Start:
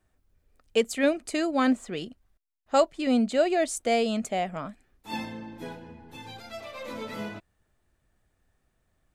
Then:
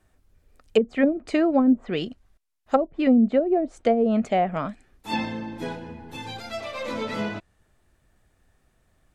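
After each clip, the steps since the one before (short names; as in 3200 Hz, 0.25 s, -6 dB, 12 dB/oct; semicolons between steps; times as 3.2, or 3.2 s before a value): treble ducked by the level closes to 310 Hz, closed at -19 dBFS; gain +7 dB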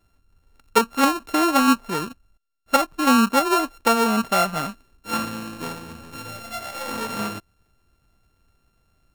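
sample sorter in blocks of 32 samples; dynamic EQ 1100 Hz, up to +5 dB, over -35 dBFS, Q 1.6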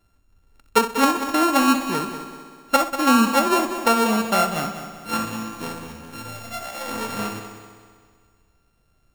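multi-head echo 64 ms, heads first and third, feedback 61%, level -11.5 dB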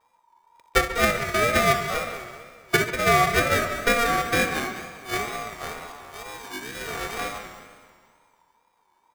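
vibrato 2.1 Hz 96 cents; speakerphone echo 0.14 s, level -11 dB; ring modulator 940 Hz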